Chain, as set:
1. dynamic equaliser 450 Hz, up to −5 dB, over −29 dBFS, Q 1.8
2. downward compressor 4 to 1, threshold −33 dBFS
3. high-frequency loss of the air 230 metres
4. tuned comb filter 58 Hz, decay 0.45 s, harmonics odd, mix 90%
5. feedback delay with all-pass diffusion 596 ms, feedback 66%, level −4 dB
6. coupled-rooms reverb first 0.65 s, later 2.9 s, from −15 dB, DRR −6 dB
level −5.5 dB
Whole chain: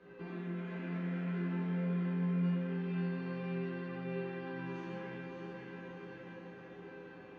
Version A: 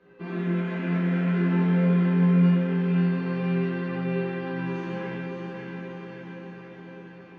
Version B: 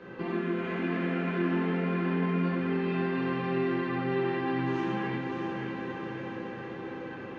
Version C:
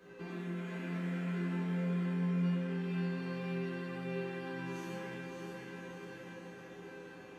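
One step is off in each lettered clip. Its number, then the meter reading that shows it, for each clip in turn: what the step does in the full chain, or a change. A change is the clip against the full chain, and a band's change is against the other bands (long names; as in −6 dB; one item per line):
2, average gain reduction 8.0 dB
4, 125 Hz band −8.0 dB
3, 4 kHz band +4.5 dB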